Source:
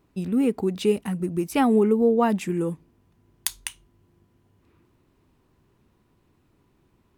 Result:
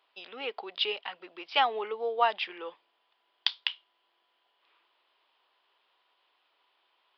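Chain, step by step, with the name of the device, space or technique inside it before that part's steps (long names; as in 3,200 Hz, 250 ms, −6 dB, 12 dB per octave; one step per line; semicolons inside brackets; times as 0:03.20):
musical greeting card (downsampling to 11,025 Hz; high-pass filter 640 Hz 24 dB per octave; parametric band 3,200 Hz +11.5 dB 0.47 octaves)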